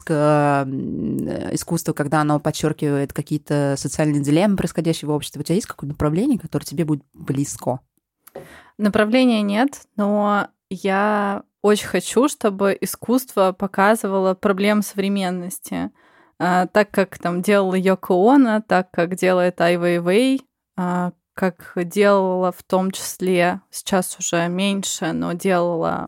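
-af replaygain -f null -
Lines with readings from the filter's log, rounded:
track_gain = -0.4 dB
track_peak = 0.503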